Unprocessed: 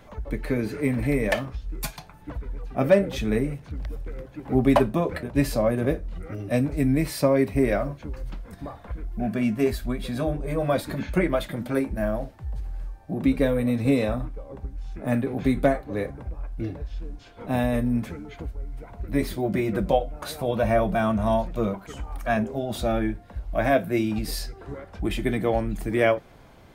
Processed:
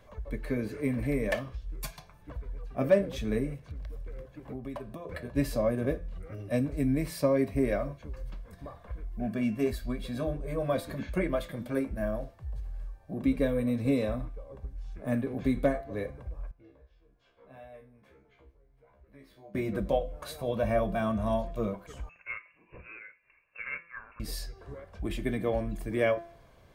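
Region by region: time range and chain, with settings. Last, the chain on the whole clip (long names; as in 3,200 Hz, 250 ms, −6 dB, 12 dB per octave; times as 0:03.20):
0:03.57–0:05.09: transient designer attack +4 dB, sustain 0 dB + downward compressor, threshold −29 dBFS
0:16.51–0:19.55: downward compressor 1.5 to 1, threshold −43 dBFS + bass and treble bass −8 dB, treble −10 dB + tuned comb filter 67 Hz, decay 0.26 s, mix 100%
0:22.09–0:24.20: Butterworth high-pass 1,100 Hz 96 dB per octave + voice inversion scrambler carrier 3,800 Hz
whole clip: hum removal 170.1 Hz, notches 39; dynamic equaliser 260 Hz, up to +7 dB, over −37 dBFS, Q 2.1; comb filter 1.8 ms, depth 38%; level −8 dB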